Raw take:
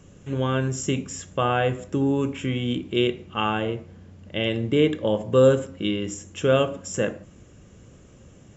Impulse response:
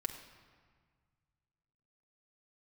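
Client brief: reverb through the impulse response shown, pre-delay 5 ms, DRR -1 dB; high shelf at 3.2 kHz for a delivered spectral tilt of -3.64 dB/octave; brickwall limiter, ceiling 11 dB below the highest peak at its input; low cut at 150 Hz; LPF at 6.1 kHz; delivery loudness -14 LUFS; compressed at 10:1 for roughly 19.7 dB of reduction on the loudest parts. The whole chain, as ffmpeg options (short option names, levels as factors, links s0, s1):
-filter_complex "[0:a]highpass=150,lowpass=6100,highshelf=f=3200:g=8,acompressor=threshold=0.0224:ratio=10,alimiter=level_in=1.58:limit=0.0631:level=0:latency=1,volume=0.631,asplit=2[s0][s1];[1:a]atrim=start_sample=2205,adelay=5[s2];[s1][s2]afir=irnorm=-1:irlink=0,volume=1.06[s3];[s0][s3]amix=inputs=2:normalize=0,volume=12.6"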